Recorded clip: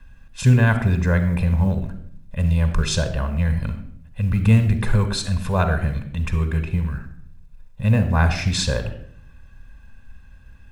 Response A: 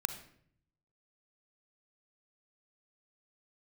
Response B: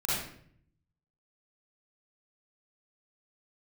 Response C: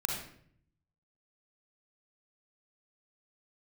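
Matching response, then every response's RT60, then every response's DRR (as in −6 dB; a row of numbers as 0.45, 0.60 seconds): A; 0.60, 0.60, 0.60 seconds; 9.0, −9.0, −0.5 decibels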